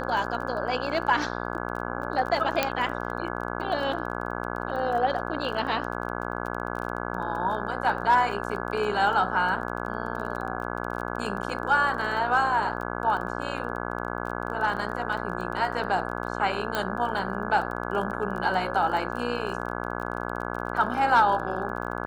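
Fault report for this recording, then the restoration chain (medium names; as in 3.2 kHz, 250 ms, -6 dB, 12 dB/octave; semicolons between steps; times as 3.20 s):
buzz 60 Hz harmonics 28 -32 dBFS
crackle 23 per s -34 dBFS
2.63 s: pop -7 dBFS
16.75 s: pop -12 dBFS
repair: de-click; de-hum 60 Hz, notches 28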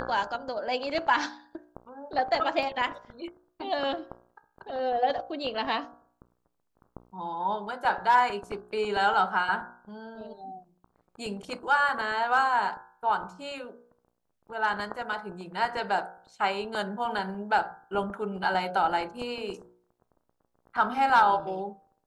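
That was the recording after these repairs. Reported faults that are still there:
2.63 s: pop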